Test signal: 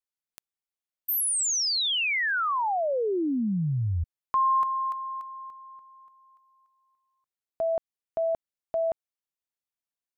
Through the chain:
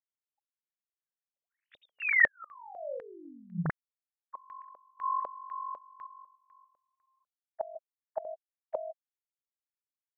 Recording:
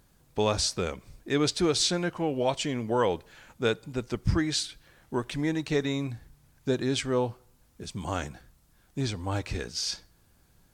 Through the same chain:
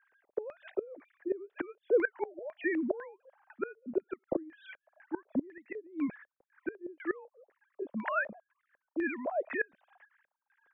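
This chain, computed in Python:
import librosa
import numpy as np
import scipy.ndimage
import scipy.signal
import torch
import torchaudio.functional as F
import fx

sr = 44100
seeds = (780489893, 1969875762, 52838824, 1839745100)

y = fx.sine_speech(x, sr)
y = fx.gate_flip(y, sr, shuts_db=-23.0, range_db=-26)
y = fx.filter_lfo_lowpass(y, sr, shape='square', hz=2.0, low_hz=570.0, high_hz=1800.0, q=4.1)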